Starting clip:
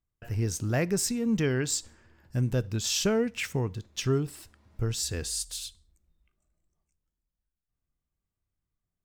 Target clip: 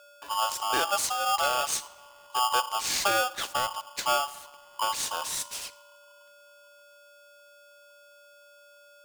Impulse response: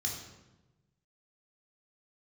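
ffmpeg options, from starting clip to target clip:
-filter_complex "[0:a]aeval=exprs='val(0)+0.00282*sin(2*PI*420*n/s)':c=same,asplit=2[a][b];[1:a]atrim=start_sample=2205,adelay=40[c];[b][c]afir=irnorm=-1:irlink=0,volume=-23dB[d];[a][d]amix=inputs=2:normalize=0,aeval=exprs='val(0)*sgn(sin(2*PI*1000*n/s))':c=same"

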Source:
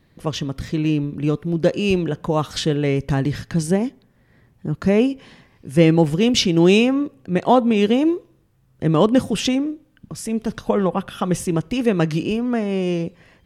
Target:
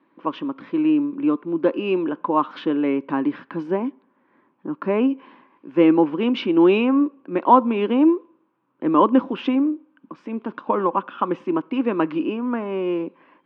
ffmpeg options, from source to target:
-af "highpass=f=280:w=0.5412,highpass=f=280:w=1.3066,equalizer=f=290:t=q:w=4:g=5,equalizer=f=450:t=q:w=4:g=-8,equalizer=f=700:t=q:w=4:g=-9,equalizer=f=1k:t=q:w=4:g=9,equalizer=f=1.9k:t=q:w=4:g=-10,lowpass=f=2.3k:w=0.5412,lowpass=f=2.3k:w=1.3066,volume=2dB"

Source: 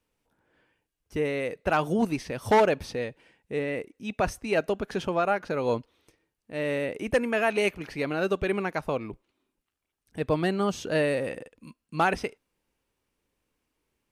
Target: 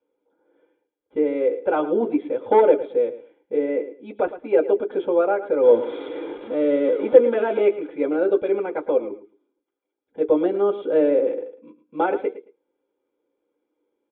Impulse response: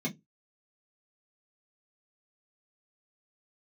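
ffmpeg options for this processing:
-filter_complex "[0:a]asettb=1/sr,asplit=3[a][b][c];[a]atrim=end=5.634[d];[b]atrim=start=5.63:end=7.65,asetpts=PTS-STARTPTS,afade=t=in:d=0.004:c=qsin,afade=t=out:st=2.016:d=0.004:c=qsin,aeval=exprs='val(0)+0.5*0.0355*sgn(val(0))':c=same[e];[c]atrim=start=7.646[f];[d][e]acrossfade=d=0.004:c1=hsin:c2=qsin[g];[g][f]acrossfade=d=0.004:c1=qsin:c2=hsin,aecho=1:1:110|220:0.2|0.0379[h];[1:a]atrim=start_sample=2205,asetrate=88200,aresample=44100[i];[h][i]afir=irnorm=-1:irlink=0,aresample=8000,aresample=44100,volume=-2dB"

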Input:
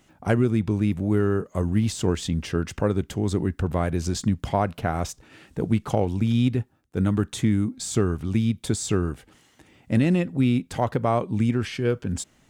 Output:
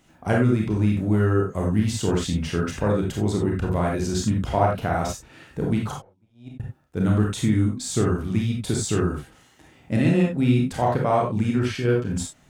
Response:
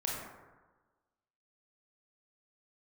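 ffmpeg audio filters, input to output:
-filter_complex "[0:a]asettb=1/sr,asplit=3[a][b][c];[a]atrim=end=5.924[d];[b]atrim=start=5.92:end=6.6,asetpts=PTS-STARTPTS,afade=t=in:d=0.004:c=qsin,afade=t=out:st=0.676:d=0.004:c=qsin,agate=range=-41dB:threshold=-15dB:ratio=16:detection=peak[e];[c]atrim=start=6.596[f];[d][e]acrossfade=d=0.004:c1=hsin:c2=qsin[g];[g][f]acrossfade=d=0.004:c1=qsin:c2=hsin[h];[1:a]atrim=start_sample=2205,atrim=end_sample=4410[i];[h][i]afir=irnorm=-1:irlink=0"

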